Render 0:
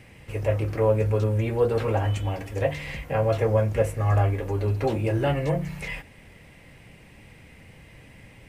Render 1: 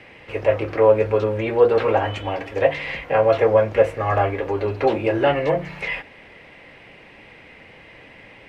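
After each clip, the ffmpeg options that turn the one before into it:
-filter_complex "[0:a]acrossover=split=290 4400:gain=0.178 1 0.0794[a][b][c];[a][b][c]amix=inputs=3:normalize=0,volume=8.5dB"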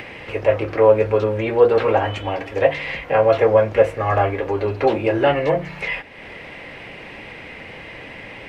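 -af "acompressor=mode=upward:threshold=-29dB:ratio=2.5,volume=1.5dB"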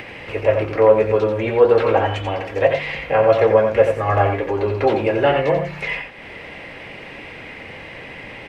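-af "aecho=1:1:88:0.473"

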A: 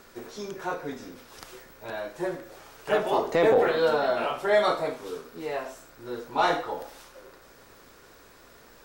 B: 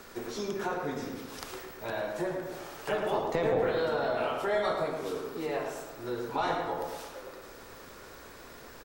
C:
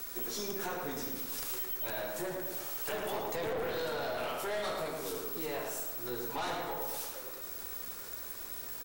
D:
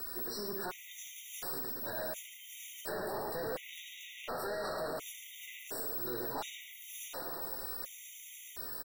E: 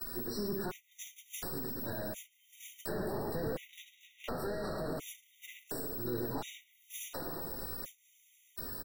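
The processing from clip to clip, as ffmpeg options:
-filter_complex "[0:a]acrossover=split=130[a][b];[b]acompressor=threshold=-36dB:ratio=2.5[c];[a][c]amix=inputs=2:normalize=0,asplit=2[d][e];[e]adelay=110,lowpass=f=2.4k:p=1,volume=-4dB,asplit=2[f][g];[g]adelay=110,lowpass=f=2.4k:p=1,volume=0.52,asplit=2[h][i];[i]adelay=110,lowpass=f=2.4k:p=1,volume=0.52,asplit=2[j][k];[k]adelay=110,lowpass=f=2.4k:p=1,volume=0.52,asplit=2[l][m];[m]adelay=110,lowpass=f=2.4k:p=1,volume=0.52,asplit=2[n][o];[o]adelay=110,lowpass=f=2.4k:p=1,volume=0.52,asplit=2[p][q];[q]adelay=110,lowpass=f=2.4k:p=1,volume=0.52[r];[d][f][h][j][l][n][p][r]amix=inputs=8:normalize=0,volume=3dB"
-af "aemphasis=mode=production:type=75fm,aeval=exprs='(tanh(31.6*val(0)+0.35)-tanh(0.35))/31.6':c=same,volume=-1.5dB"
-filter_complex "[0:a]asoftclip=type=tanh:threshold=-38dB,asplit=2[a][b];[b]aecho=0:1:686:0.422[c];[a][c]amix=inputs=2:normalize=0,afftfilt=real='re*gt(sin(2*PI*0.7*pts/sr)*(1-2*mod(floor(b*sr/1024/1900),2)),0)':imag='im*gt(sin(2*PI*0.7*pts/sr)*(1-2*mod(floor(b*sr/1024/1900),2)),0)':win_size=1024:overlap=0.75,volume=3dB"
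-filter_complex "[0:a]agate=range=-26dB:threshold=-45dB:ratio=16:detection=peak,acrossover=split=320[a][b];[b]acompressor=threshold=-52dB:ratio=5[c];[a][c]amix=inputs=2:normalize=0,volume=10dB"

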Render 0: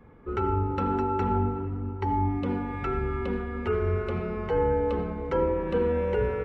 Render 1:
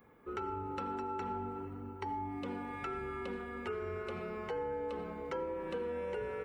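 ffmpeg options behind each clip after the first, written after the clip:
-af "aemphasis=mode=production:type=bsi,acompressor=threshold=-31dB:ratio=3,volume=-5.5dB"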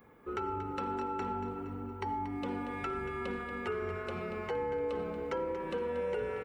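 -af "aecho=1:1:233|466|699|932|1165:0.282|0.132|0.0623|0.0293|0.0138,volume=3dB"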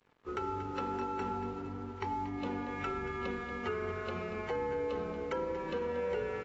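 -af "aeval=exprs='sgn(val(0))*max(abs(val(0))-0.00133,0)':c=same" -ar 22050 -c:a aac -b:a 24k

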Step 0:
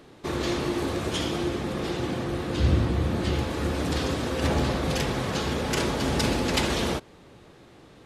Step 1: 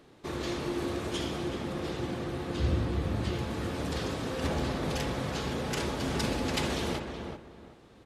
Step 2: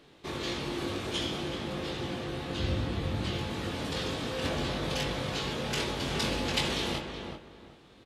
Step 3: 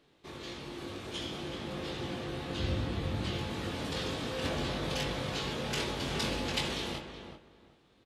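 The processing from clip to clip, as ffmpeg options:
-filter_complex "[0:a]asplit=2[a][b];[b]adelay=374,lowpass=f=1.9k:p=1,volume=-5.5dB,asplit=2[c][d];[d]adelay=374,lowpass=f=1.9k:p=1,volume=0.26,asplit=2[e][f];[f]adelay=374,lowpass=f=1.9k:p=1,volume=0.26[g];[a][c][e][g]amix=inputs=4:normalize=0,volume=-6.5dB"
-filter_complex "[0:a]equalizer=f=3.3k:t=o:w=1.3:g=7,asplit=2[a][b];[b]adelay=21,volume=-4.5dB[c];[a][c]amix=inputs=2:normalize=0,volume=-2.5dB"
-af "dynaudnorm=f=260:g=11:m=7dB,volume=-9dB"

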